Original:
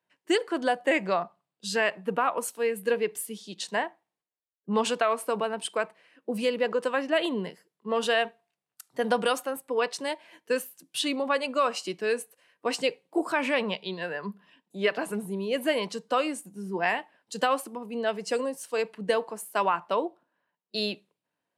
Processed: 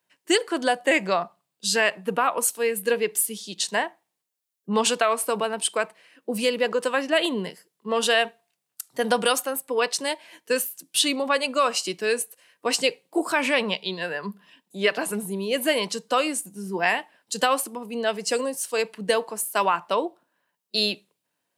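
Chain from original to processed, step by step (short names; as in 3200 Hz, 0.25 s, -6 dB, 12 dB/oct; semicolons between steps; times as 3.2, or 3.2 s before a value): high shelf 3600 Hz +10.5 dB; gain +2.5 dB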